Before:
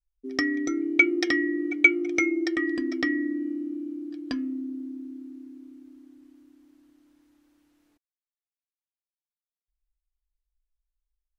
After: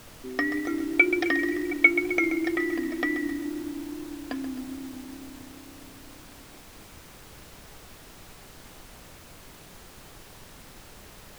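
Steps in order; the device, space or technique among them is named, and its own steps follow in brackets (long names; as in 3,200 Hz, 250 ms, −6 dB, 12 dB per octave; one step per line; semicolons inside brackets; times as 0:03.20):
horn gramophone (band-pass filter 300–3,100 Hz; parametric band 720 Hz +7 dB; tape wow and flutter; pink noise bed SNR 16 dB)
feedback echo at a low word length 131 ms, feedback 55%, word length 7 bits, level −10 dB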